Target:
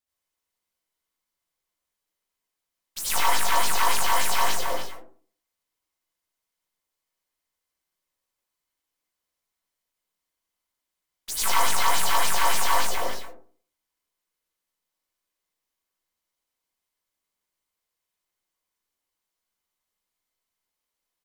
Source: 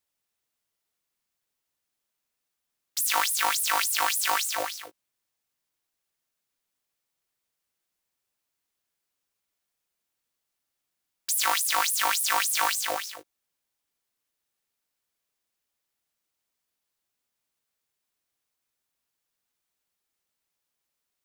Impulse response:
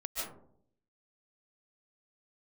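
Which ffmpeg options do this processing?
-filter_complex "[0:a]aeval=exprs='0.376*(cos(1*acos(clip(val(0)/0.376,-1,1)))-cos(1*PI/2))+0.015*(cos(7*acos(clip(val(0)/0.376,-1,1)))-cos(7*PI/2))+0.0188*(cos(8*acos(clip(val(0)/0.376,-1,1)))-cos(8*PI/2))':c=same,asplit=2[a][b];[b]asetrate=33038,aresample=44100,atempo=1.33484,volume=-4dB[c];[a][c]amix=inputs=2:normalize=0[d];[1:a]atrim=start_sample=2205,asetrate=70560,aresample=44100[e];[d][e]afir=irnorm=-1:irlink=0,volume=2dB"

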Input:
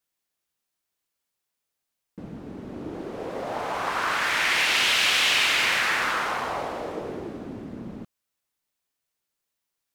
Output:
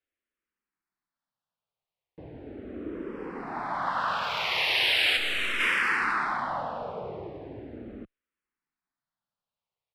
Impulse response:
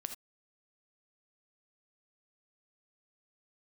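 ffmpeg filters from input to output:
-filter_complex "[0:a]asplit=3[a][b][c];[a]afade=t=out:st=5.16:d=0.02[d];[b]aeval=exprs='(tanh(12.6*val(0)+0.75)-tanh(0.75))/12.6':c=same,afade=t=in:st=5.16:d=0.02,afade=t=out:st=5.59:d=0.02[e];[c]afade=t=in:st=5.59:d=0.02[f];[d][e][f]amix=inputs=3:normalize=0,equalizer=f=6.5k:t=o:w=0.43:g=-12,acrossover=split=400|1000|2800[g][h][i][j];[j]adynamicsmooth=sensitivity=8:basefreq=4.1k[k];[g][h][i][k]amix=inputs=4:normalize=0,aresample=32000,aresample=44100,asplit=2[l][m];[m]afreqshift=-0.38[n];[l][n]amix=inputs=2:normalize=1"

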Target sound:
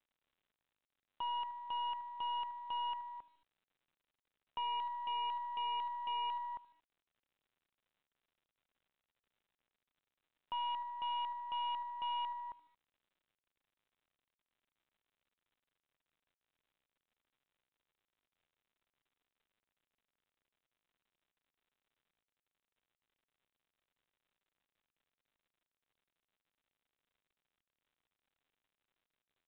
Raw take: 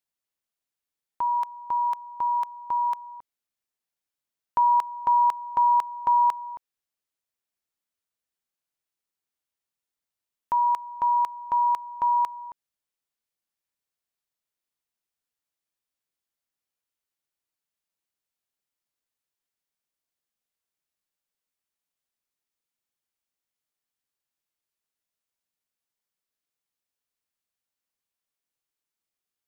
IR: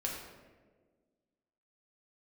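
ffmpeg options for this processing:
-af "aecho=1:1:76|152|228:0.0891|0.0401|0.018,aresample=11025,asoftclip=type=hard:threshold=-29.5dB,aresample=44100,aeval=exprs='0.0447*(cos(1*acos(clip(val(0)/0.0447,-1,1)))-cos(1*PI/2))+0.00316*(cos(3*acos(clip(val(0)/0.0447,-1,1)))-cos(3*PI/2))+0.002*(cos(4*acos(clip(val(0)/0.0447,-1,1)))-cos(4*PI/2))+0.00158*(cos(5*acos(clip(val(0)/0.0447,-1,1)))-cos(5*PI/2))':c=same,volume=-6.5dB" -ar 8000 -c:a pcm_mulaw

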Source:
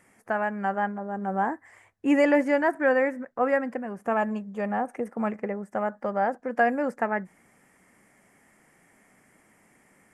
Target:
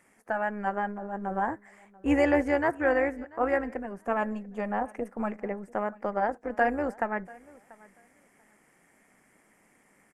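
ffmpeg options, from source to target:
-af "highpass=140,tremolo=f=210:d=0.571,aecho=1:1:688|1376:0.0708|0.0127"

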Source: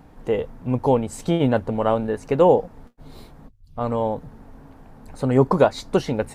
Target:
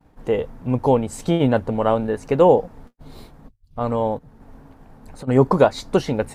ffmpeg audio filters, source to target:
-filter_complex "[0:a]asplit=3[a][b][c];[a]afade=t=out:st=4.17:d=0.02[d];[b]acompressor=threshold=-36dB:ratio=12,afade=t=in:st=4.17:d=0.02,afade=t=out:st=5.27:d=0.02[e];[c]afade=t=in:st=5.27:d=0.02[f];[d][e][f]amix=inputs=3:normalize=0,agate=range=-33dB:threshold=-41dB:ratio=3:detection=peak,volume=1.5dB"

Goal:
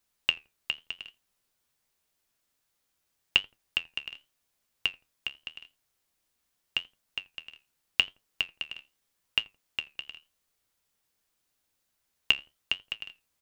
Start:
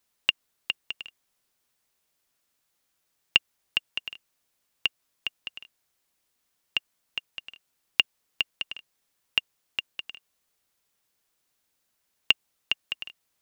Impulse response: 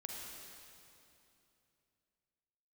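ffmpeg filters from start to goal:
-filter_complex "[0:a]lowshelf=f=100:g=6.5,asplit=2[a][b];[b]adelay=84,lowpass=f=890:p=1,volume=-20.5dB,asplit=2[c][d];[d]adelay=84,lowpass=f=890:p=1,volume=0.32[e];[a][c][e]amix=inputs=3:normalize=0,flanger=delay=9:depth=5.8:regen=66:speed=0.85:shape=triangular,volume=2dB"

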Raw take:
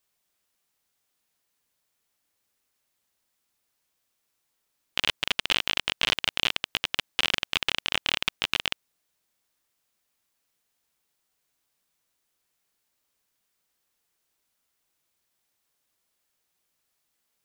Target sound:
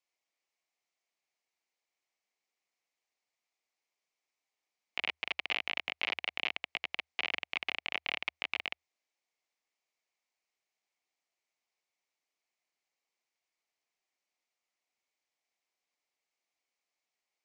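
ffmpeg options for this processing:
-filter_complex "[0:a]acrossover=split=4200[a][b];[b]acompressor=threshold=-48dB:ratio=4:attack=1:release=60[c];[a][c]amix=inputs=2:normalize=0,afreqshift=-80,highpass=310,equalizer=f=730:t=q:w=4:g=5,equalizer=f=1.5k:t=q:w=4:g=-6,equalizer=f=2.2k:t=q:w=4:g=8,equalizer=f=3.5k:t=q:w=4:g=-3,lowpass=f=7k:w=0.5412,lowpass=f=7k:w=1.3066,volume=-9dB"

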